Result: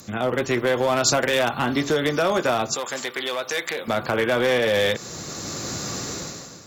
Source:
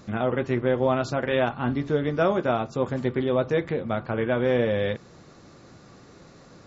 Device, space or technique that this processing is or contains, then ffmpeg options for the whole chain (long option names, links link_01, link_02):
FM broadcast chain: -filter_complex "[0:a]highpass=51,dynaudnorm=framelen=120:gausssize=9:maxgain=16.5dB,acrossover=split=300|600[link_01][link_02][link_03];[link_01]acompressor=threshold=-30dB:ratio=4[link_04];[link_02]acompressor=threshold=-22dB:ratio=4[link_05];[link_03]acompressor=threshold=-17dB:ratio=4[link_06];[link_04][link_05][link_06]amix=inputs=3:normalize=0,aemphasis=mode=production:type=50fm,alimiter=limit=-12.5dB:level=0:latency=1:release=120,asoftclip=type=hard:threshold=-16dB,lowpass=frequency=15000:width=0.5412,lowpass=frequency=15000:width=1.3066,aemphasis=mode=production:type=50fm,asettb=1/sr,asplit=3[link_07][link_08][link_09];[link_07]atrim=end=2.754[link_10];[link_08]atrim=start=2.75:end=3.88,asetpts=PTS-STARTPTS,afade=type=in:duration=0.004:curve=qsin,afade=type=out:start_time=1.126:duration=0.004:curve=qsin,highpass=frequency=1200:poles=1[link_11];[link_09]atrim=start=3.876[link_12];[link_10][link_11]acrossfade=duration=0.004:curve1=hsin:curve2=qsin[link_13];[link_13][link_12]acrossfade=duration=0.004:curve1=qsin:curve2=hsin,volume=1.5dB"